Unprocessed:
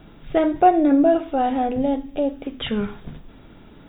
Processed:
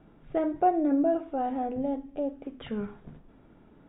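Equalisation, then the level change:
high-frequency loss of the air 300 metres
low-shelf EQ 120 Hz −7 dB
high-shelf EQ 2,300 Hz −9 dB
−7.0 dB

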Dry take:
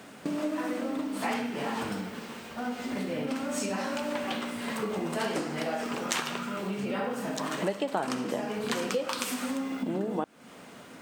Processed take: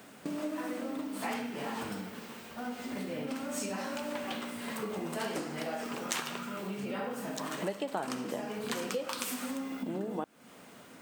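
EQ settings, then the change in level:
high-shelf EQ 12,000 Hz +10.5 dB
−5.0 dB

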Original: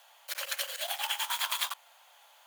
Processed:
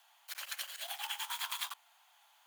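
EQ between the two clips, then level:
Butterworth high-pass 680 Hz 48 dB per octave
−7.0 dB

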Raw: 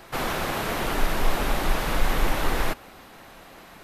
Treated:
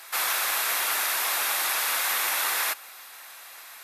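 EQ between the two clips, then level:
high-pass filter 1,200 Hz 12 dB per octave
parametric band 12,000 Hz +10.5 dB 1.6 octaves
notch filter 3,000 Hz, Q 18
+3.0 dB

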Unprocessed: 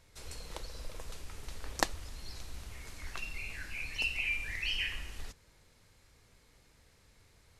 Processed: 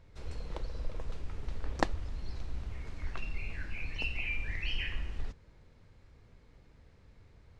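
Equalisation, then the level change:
head-to-tape spacing loss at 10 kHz 21 dB
low-shelf EQ 450 Hz +6 dB
+1.5 dB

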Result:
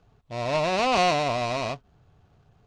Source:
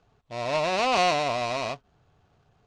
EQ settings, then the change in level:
low-shelf EQ 260 Hz +7 dB
0.0 dB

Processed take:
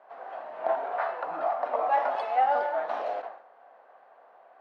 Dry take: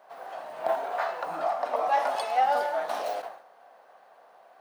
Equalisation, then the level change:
band-pass filter 230–2,200 Hz
0.0 dB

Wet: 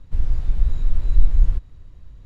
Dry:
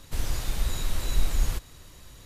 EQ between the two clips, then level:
RIAA equalisation playback
high-shelf EQ 8,600 Hz −8.5 dB
−9.0 dB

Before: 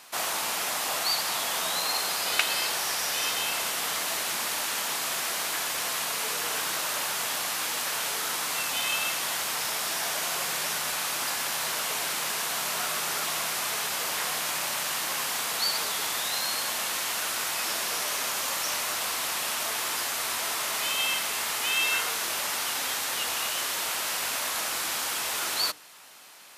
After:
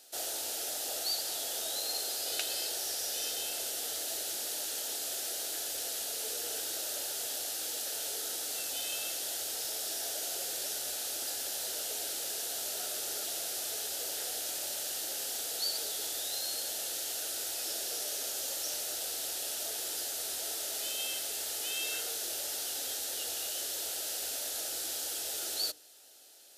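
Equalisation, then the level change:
parametric band 2,200 Hz −12 dB 0.73 octaves
phaser with its sweep stopped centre 440 Hz, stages 4
−4.0 dB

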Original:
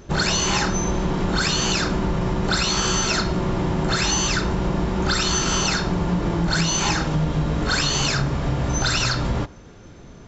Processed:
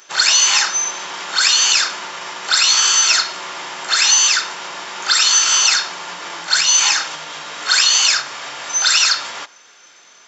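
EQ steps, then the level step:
high-pass filter 1,100 Hz 12 dB per octave
high-shelf EQ 2,100 Hz +9 dB
notch filter 4,000 Hz, Q 22
+3.5 dB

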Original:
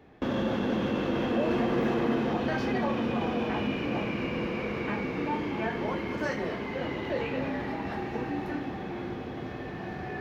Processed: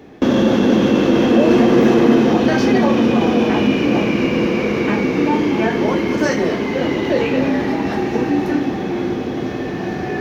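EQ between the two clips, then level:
parametric band 300 Hz +9.5 dB 2.1 octaves
high-shelf EQ 2,300 Hz +9 dB
parametric band 6,000 Hz +5.5 dB 0.42 octaves
+7.0 dB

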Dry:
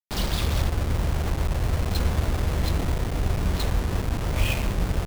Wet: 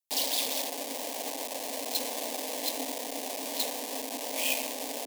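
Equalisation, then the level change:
Chebyshev high-pass filter 260 Hz, order 6
high-shelf EQ 4,700 Hz +10 dB
phaser with its sweep stopped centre 360 Hz, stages 6
0.0 dB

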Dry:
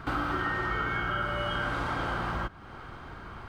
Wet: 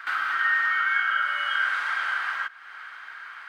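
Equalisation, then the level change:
high-pass with resonance 1,700 Hz, resonance Q 3.1
+2.5 dB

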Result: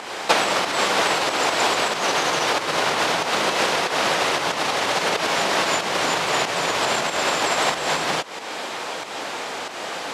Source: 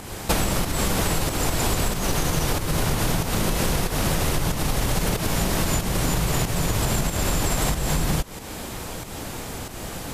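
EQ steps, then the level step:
band-pass filter 550–4,600 Hz
+9.0 dB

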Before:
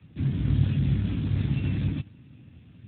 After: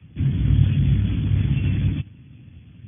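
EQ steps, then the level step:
linear-phase brick-wall low-pass 3,500 Hz
low-shelf EQ 160 Hz +9 dB
high-shelf EQ 2,700 Hz +10.5 dB
0.0 dB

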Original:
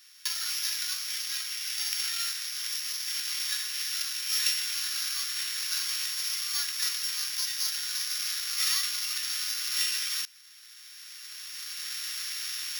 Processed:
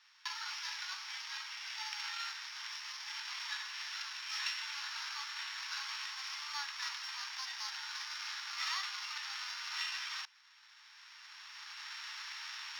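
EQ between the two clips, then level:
high-pass with resonance 860 Hz, resonance Q 7.1
high-frequency loss of the air 170 metres
−3.5 dB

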